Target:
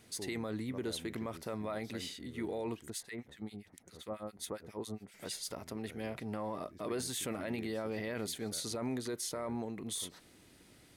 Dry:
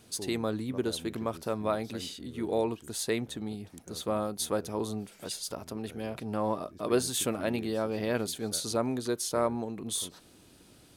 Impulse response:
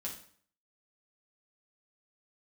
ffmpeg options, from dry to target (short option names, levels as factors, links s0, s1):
-filter_complex "[0:a]equalizer=f=2000:w=4.4:g=10,alimiter=level_in=1.12:limit=0.0631:level=0:latency=1:release=12,volume=0.891,asettb=1/sr,asplit=3[s0][s1][s2];[s0]atrim=end=2.904[s3];[s1]atrim=start=2.9:end=5.14,asetpts=PTS-STARTPTS,afade=t=in:d=0.004:c=qsin,afade=t=out:st=2.236:d=0.004:c=qsin,acrossover=split=1500[s4][s5];[s4]aeval=exprs='val(0)*(1-1/2+1/2*cos(2*PI*7.4*n/s))':c=same[s6];[s5]aeval=exprs='val(0)*(1-1/2-1/2*cos(2*PI*7.4*n/s))':c=same[s7];[s6][s7]amix=inputs=2:normalize=0[s8];[s2]atrim=start=5.136[s9];[s3][s8]acrossfade=d=0.004:c1=hsin:c2=qsin[s10];[s10][s9]acrossfade=d=0.004:c1=qsin:c2=hsin,volume=0.631"